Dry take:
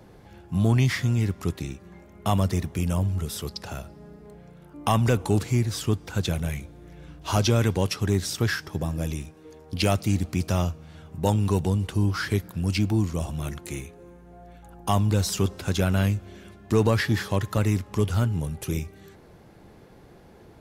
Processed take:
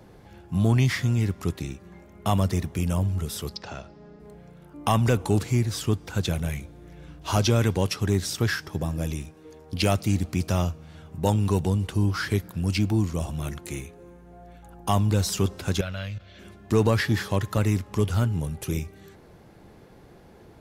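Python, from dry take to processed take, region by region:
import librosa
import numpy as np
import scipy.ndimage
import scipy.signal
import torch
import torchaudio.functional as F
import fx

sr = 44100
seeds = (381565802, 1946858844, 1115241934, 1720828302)

y = fx.chain(x, sr, fx.lowpass(hz=6000.0, slope=24),
    fx.peak_eq(hz=81.0, db=-6.5, octaves=2.1), at=(3.56, 4.2))
y = fx.chain(y, sr, fx.level_steps(step_db=16),
    fx.curve_eq(hz=(120.0, 190.0, 380.0, 570.0, 820.0, 1400.0, 2200.0, 4100.0, 8900.0, 13000.0), db=(0, -4, -10, 6, -4, 5, 6, 10, -12, -9)), at=(15.81, 16.39))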